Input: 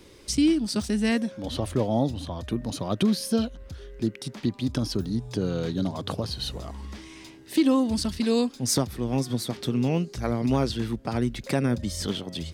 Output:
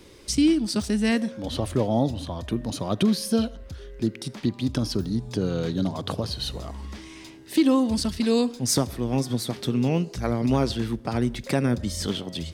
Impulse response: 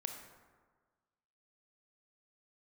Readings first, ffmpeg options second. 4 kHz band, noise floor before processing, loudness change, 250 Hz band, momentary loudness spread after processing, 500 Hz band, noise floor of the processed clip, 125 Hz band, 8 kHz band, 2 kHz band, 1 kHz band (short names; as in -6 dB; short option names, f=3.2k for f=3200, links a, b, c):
+1.5 dB, -49 dBFS, +1.5 dB, +1.5 dB, 9 LU, +1.5 dB, -45 dBFS, +1.5 dB, +1.5 dB, +1.5 dB, +1.5 dB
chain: -filter_complex "[0:a]asplit=2[a][b];[1:a]atrim=start_sample=2205,afade=t=out:st=0.2:d=0.01,atrim=end_sample=9261,asetrate=34839,aresample=44100[c];[b][c]afir=irnorm=-1:irlink=0,volume=-13.5dB[d];[a][d]amix=inputs=2:normalize=0"